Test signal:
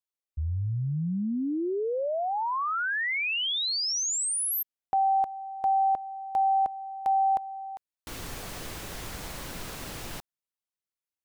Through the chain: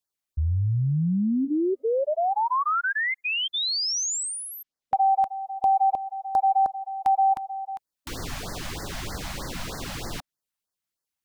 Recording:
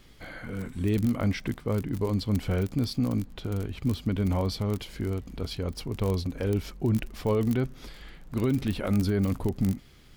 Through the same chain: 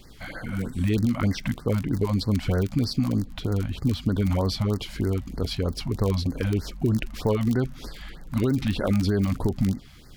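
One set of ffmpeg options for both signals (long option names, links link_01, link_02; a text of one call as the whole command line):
ffmpeg -i in.wav -filter_complex "[0:a]acrossover=split=1200|7200[link_01][link_02][link_03];[link_01]acompressor=threshold=-25dB:ratio=4[link_04];[link_02]acompressor=threshold=-32dB:ratio=4[link_05];[link_03]acompressor=threshold=-53dB:ratio=4[link_06];[link_04][link_05][link_06]amix=inputs=3:normalize=0,afftfilt=real='re*(1-between(b*sr/1024,360*pow(3000/360,0.5+0.5*sin(2*PI*3.2*pts/sr))/1.41,360*pow(3000/360,0.5+0.5*sin(2*PI*3.2*pts/sr))*1.41))':imag='im*(1-between(b*sr/1024,360*pow(3000/360,0.5+0.5*sin(2*PI*3.2*pts/sr))/1.41,360*pow(3000/360,0.5+0.5*sin(2*PI*3.2*pts/sr))*1.41))':win_size=1024:overlap=0.75,volume=6dB" out.wav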